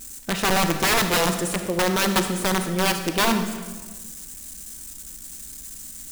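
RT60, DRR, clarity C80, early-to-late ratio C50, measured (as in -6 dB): 1.4 s, 6.5 dB, 9.0 dB, 7.5 dB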